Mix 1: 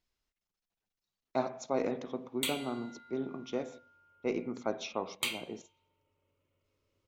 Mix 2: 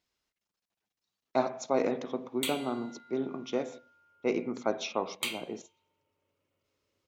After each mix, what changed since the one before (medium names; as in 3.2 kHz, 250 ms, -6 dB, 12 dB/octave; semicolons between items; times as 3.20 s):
speech +4.5 dB; master: add high-pass 160 Hz 6 dB/octave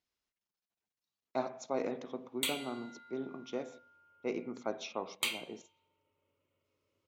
speech -7.0 dB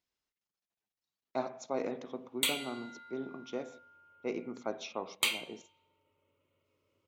background +4.0 dB